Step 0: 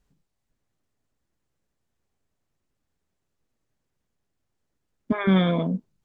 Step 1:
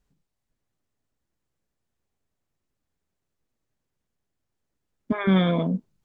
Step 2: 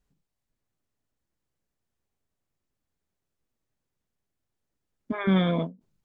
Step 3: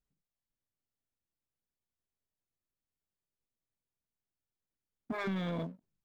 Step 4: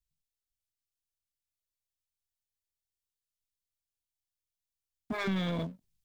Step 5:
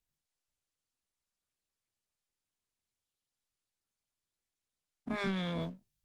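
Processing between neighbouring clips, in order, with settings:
gain riding within 4 dB 2 s
endings held to a fixed fall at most 220 dB/s; trim -2.5 dB
compression, threshold -28 dBFS, peak gain reduction 10.5 dB; waveshaping leveller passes 2; trim -8.5 dB
three bands expanded up and down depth 70%; trim +2 dB
every event in the spectrogram widened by 60 ms; trim -5 dB; Opus 32 kbps 48 kHz

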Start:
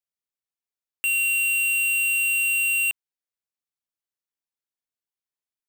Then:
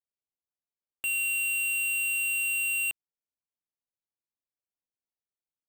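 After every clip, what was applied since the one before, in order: local Wiener filter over 25 samples; trim -2 dB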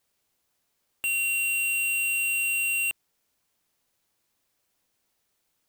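power-law waveshaper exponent 0.7; trim +2 dB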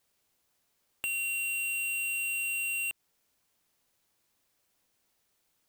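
compression, threshold -33 dBFS, peak gain reduction 6 dB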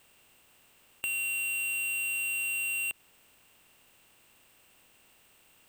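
spectral levelling over time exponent 0.6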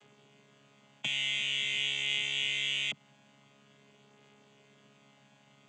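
vocoder on a held chord bare fifth, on C#3

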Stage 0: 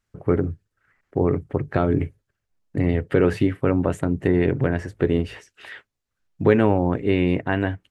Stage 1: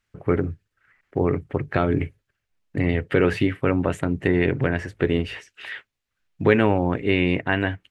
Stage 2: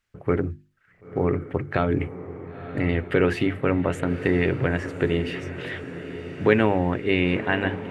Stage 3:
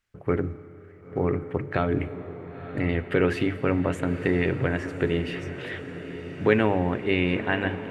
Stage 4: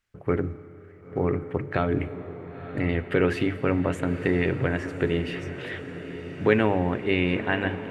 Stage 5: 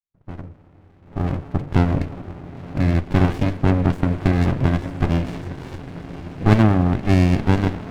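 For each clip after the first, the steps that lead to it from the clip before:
peaking EQ 2.5 kHz +8 dB 1.7 oct; trim -1.5 dB
hum notches 50/100/150/200/250/300/350 Hz; echo that smears into a reverb 994 ms, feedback 59%, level -12 dB; trim -1 dB
Schroeder reverb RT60 3.4 s, combs from 29 ms, DRR 15 dB; trim -2 dB
no audible change
fade-in on the opening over 1.81 s; sliding maximum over 65 samples; trim +5.5 dB

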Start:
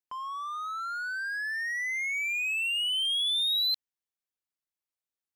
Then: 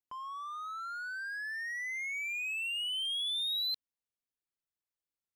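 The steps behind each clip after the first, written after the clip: bass shelf 460 Hz +7 dB; trim -6.5 dB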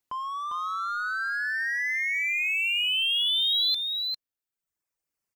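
reverb removal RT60 1.6 s; in parallel at -12 dB: wavefolder -39.5 dBFS; on the sum: delay 400 ms -4.5 dB; trim +8.5 dB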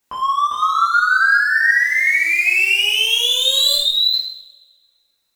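one-sided wavefolder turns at -23 dBFS; gain riding within 3 dB 0.5 s; two-slope reverb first 0.66 s, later 1.8 s, from -22 dB, DRR -7.5 dB; trim +4 dB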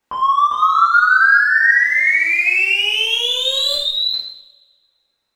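low-pass 1.5 kHz 6 dB/octave; bass shelf 450 Hz -4.5 dB; trim +6 dB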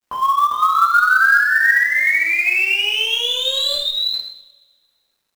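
companded quantiser 6-bit; trim -1.5 dB

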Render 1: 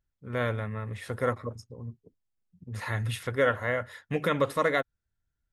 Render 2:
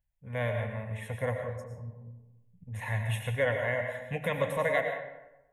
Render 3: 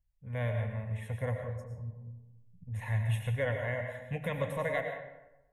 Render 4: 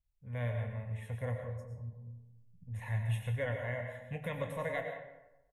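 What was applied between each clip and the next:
static phaser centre 1.3 kHz, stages 6; on a send at -4 dB: reverberation RT60 1.0 s, pre-delay 70 ms
bass shelf 150 Hz +11 dB; trim -5.5 dB
doubling 25 ms -11 dB; endings held to a fixed fall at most 330 dB/s; trim -4 dB

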